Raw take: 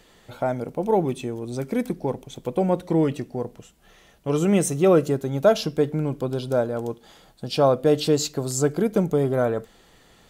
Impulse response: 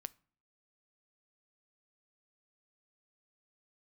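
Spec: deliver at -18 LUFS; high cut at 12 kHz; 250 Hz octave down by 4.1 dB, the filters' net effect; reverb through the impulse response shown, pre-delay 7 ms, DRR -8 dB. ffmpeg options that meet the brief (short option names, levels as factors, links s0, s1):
-filter_complex "[0:a]lowpass=12000,equalizer=f=250:t=o:g=-6,asplit=2[s0][s1];[1:a]atrim=start_sample=2205,adelay=7[s2];[s1][s2]afir=irnorm=-1:irlink=0,volume=3.98[s3];[s0][s3]amix=inputs=2:normalize=0,volume=0.794"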